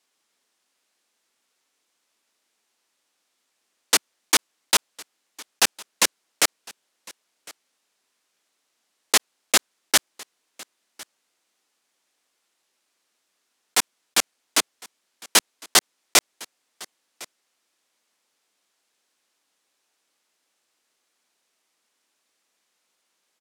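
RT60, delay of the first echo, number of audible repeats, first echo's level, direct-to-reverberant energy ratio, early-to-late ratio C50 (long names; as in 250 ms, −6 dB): no reverb audible, 1,056 ms, 1, −23.0 dB, no reverb audible, no reverb audible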